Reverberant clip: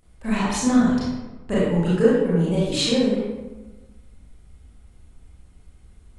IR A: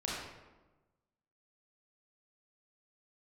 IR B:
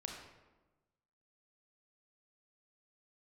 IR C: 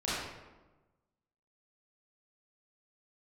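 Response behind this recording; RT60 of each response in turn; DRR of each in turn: C; 1.2, 1.2, 1.2 seconds; −6.0, 0.5, −10.5 decibels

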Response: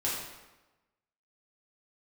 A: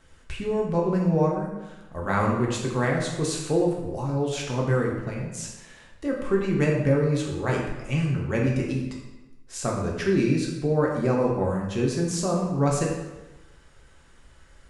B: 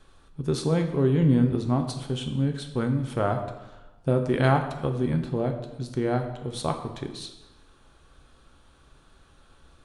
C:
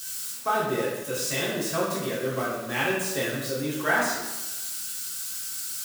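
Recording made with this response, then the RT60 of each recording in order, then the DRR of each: C; 1.1, 1.1, 1.1 seconds; −2.0, 4.5, −7.5 decibels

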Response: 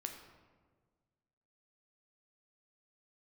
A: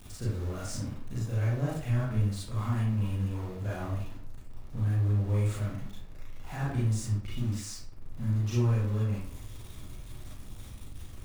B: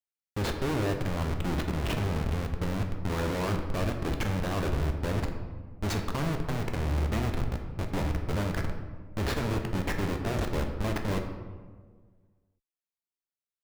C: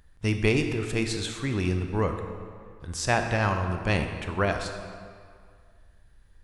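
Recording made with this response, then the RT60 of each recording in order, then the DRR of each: B; 0.55, 1.5, 2.1 seconds; −8.0, 3.5, 5.5 decibels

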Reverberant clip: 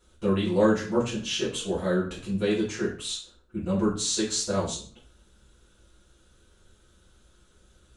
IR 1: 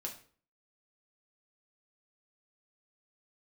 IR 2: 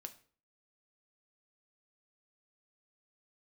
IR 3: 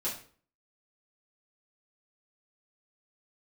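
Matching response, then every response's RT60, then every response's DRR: 3; 0.45, 0.45, 0.45 seconds; 0.0, 7.5, −8.5 decibels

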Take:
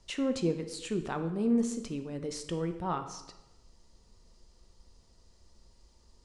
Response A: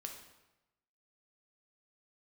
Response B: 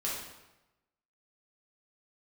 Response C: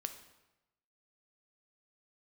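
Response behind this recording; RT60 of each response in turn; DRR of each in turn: C; 1.0, 1.0, 1.0 seconds; 2.0, −6.5, 7.0 decibels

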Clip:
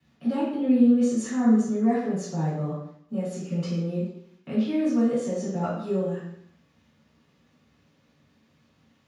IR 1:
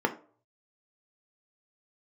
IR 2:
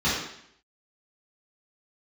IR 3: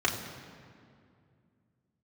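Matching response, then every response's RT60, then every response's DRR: 2; 0.45, 0.70, 2.3 seconds; 4.5, −12.0, −3.0 decibels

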